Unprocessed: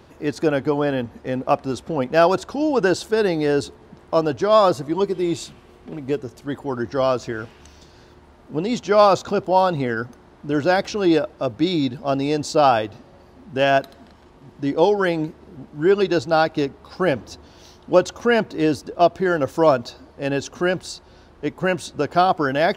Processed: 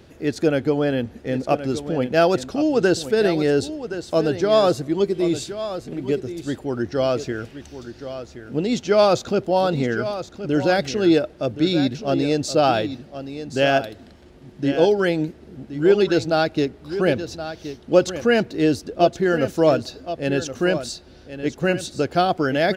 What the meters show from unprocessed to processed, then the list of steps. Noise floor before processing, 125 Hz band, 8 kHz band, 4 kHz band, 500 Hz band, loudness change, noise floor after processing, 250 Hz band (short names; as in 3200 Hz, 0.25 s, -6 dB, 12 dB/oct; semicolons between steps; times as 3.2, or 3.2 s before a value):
-49 dBFS, +1.5 dB, +1.5 dB, +1.5 dB, 0.0 dB, -0.5 dB, -47 dBFS, +1.5 dB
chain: bell 1000 Hz -11 dB 0.74 oct; on a send: echo 1.072 s -11.5 dB; on the sum: gain +1.5 dB